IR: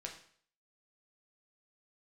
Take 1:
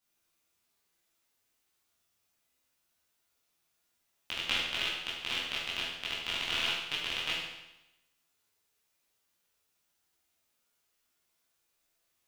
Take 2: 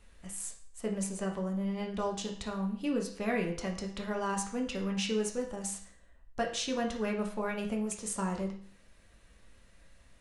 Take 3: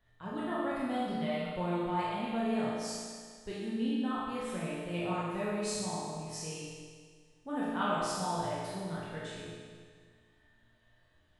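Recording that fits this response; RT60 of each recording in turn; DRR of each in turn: 2; 0.95 s, 0.55 s, 1.8 s; -9.0 dB, 0.5 dB, -9.0 dB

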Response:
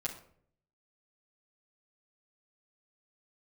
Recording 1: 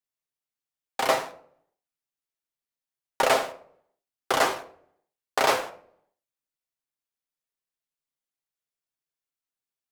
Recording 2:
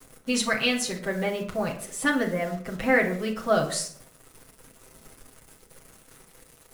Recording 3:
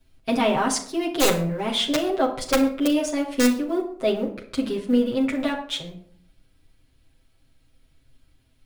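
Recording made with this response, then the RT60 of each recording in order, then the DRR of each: 3; 0.60 s, 0.60 s, 0.60 s; 4.5 dB, -9.5 dB, -5.5 dB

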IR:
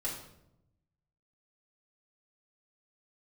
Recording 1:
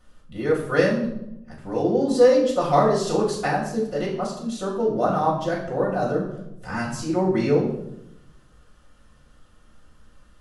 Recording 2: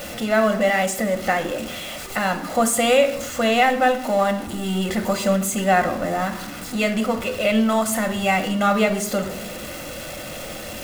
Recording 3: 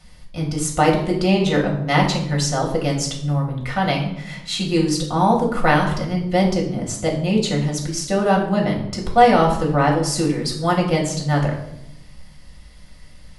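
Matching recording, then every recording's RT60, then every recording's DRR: 1; 0.80 s, 0.80 s, 0.80 s; -6.0 dB, 6.0 dB, -1.5 dB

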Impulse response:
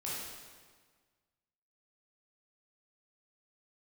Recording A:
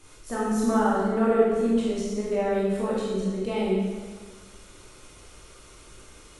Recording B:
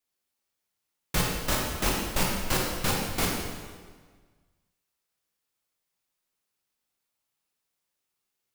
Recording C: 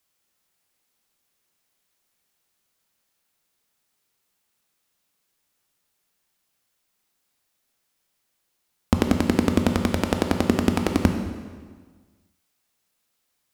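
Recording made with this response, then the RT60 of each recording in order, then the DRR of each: A; 1.6 s, 1.6 s, 1.6 s; -7.5 dB, -2.0 dB, 4.5 dB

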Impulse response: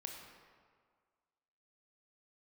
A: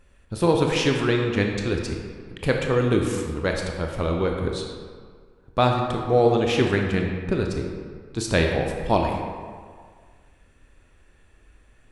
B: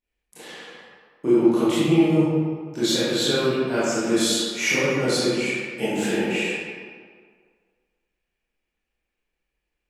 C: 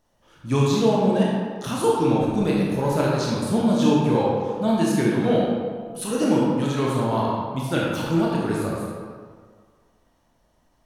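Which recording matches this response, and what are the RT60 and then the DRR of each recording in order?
A; 1.8 s, 1.8 s, 1.8 s; 1.5 dB, -12.5 dB, -5.0 dB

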